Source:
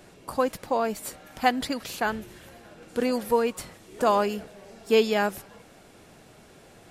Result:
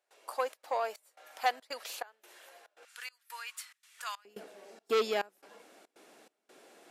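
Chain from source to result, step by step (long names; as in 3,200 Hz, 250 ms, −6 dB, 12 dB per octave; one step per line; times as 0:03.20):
high-pass filter 520 Hz 24 dB per octave, from 0:02.85 1,400 Hz, from 0:04.25 280 Hz
gate pattern ".xxxx.xxx." 141 BPM −24 dB
saturating transformer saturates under 1,300 Hz
level −5 dB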